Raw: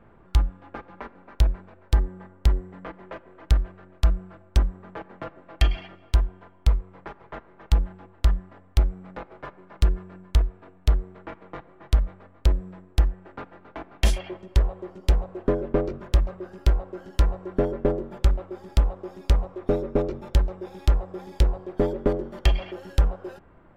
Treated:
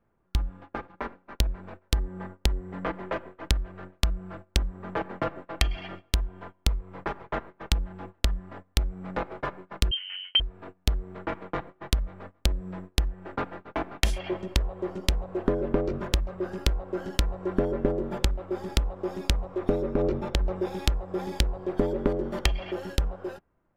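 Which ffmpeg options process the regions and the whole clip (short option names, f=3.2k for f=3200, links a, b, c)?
-filter_complex "[0:a]asettb=1/sr,asplit=3[a][b][c];[a]atrim=end=9.914[d];[b]atrim=start=9.91:end=10.4,asetpts=PTS-STARTPTS,afade=t=in:d=0.004:c=qsin,afade=t=out:st=0.486:d=0.004:c=qsin,aemphasis=mode=reproduction:type=75fm,lowpass=f=2.7k:t=q:w=0.5098,lowpass=f=2.7k:t=q:w=0.6013,lowpass=f=2.7k:t=q:w=0.9,lowpass=f=2.7k:t=q:w=2.563,afreqshift=-3200[e];[c]atrim=start=10.396[f];[d][e]acrossfade=d=0.004:c1=hsin:c2=qsin[g];[g][f]acrossfade=d=0.004:c1=qsin:c2=hsin,asettb=1/sr,asplit=3[h][i][j];[h]atrim=end=19.944[k];[i]atrim=start=19.94:end=20.56,asetpts=PTS-STARTPTS,afade=t=in:d=0.004:c=qsin,afade=t=out:st=0.616:d=0.004:c=qsin,lowpass=f=4k:p=1,acompressor=threshold=-23dB:ratio=6:attack=3.2:release=140:knee=1:detection=peak[l];[j]atrim=start=20.556[m];[k][l]acrossfade=d=0.004:c1=hsin:c2=qsin[n];[n][m]acrossfade=d=0.004:c1=qsin:c2=hsin,dynaudnorm=f=130:g=17:m=8dB,agate=range=-20dB:threshold=-41dB:ratio=16:detection=peak,acompressor=threshold=-22dB:ratio=16,volume=1.5dB"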